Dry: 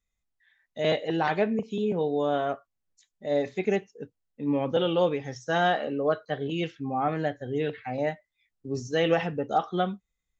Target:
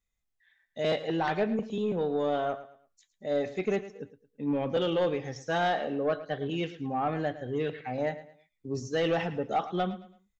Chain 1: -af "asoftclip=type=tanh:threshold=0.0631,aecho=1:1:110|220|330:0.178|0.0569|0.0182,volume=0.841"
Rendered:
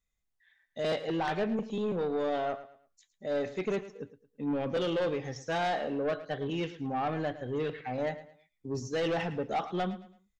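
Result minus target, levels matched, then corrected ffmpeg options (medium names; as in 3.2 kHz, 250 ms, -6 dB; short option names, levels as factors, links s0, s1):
saturation: distortion +7 dB
-af "asoftclip=type=tanh:threshold=0.133,aecho=1:1:110|220|330:0.178|0.0569|0.0182,volume=0.841"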